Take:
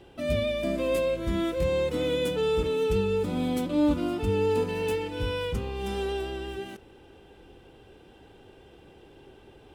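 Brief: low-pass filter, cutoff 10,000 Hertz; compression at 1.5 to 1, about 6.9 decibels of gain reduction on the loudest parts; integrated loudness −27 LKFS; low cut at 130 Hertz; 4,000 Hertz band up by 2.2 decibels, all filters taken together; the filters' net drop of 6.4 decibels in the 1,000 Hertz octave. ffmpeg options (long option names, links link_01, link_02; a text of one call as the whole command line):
ffmpeg -i in.wav -af "highpass=130,lowpass=10000,equalizer=frequency=1000:width_type=o:gain=-8.5,equalizer=frequency=4000:width_type=o:gain=3.5,acompressor=threshold=-40dB:ratio=1.5,volume=7.5dB" out.wav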